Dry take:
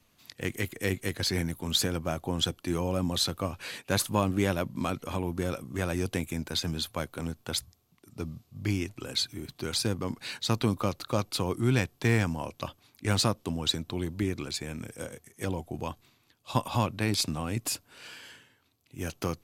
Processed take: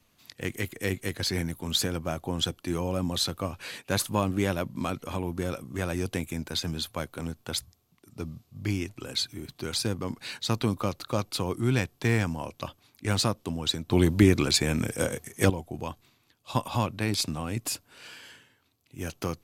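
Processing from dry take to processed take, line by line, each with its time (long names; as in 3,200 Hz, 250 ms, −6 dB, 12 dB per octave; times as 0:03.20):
0:13.91–0:15.50: clip gain +11 dB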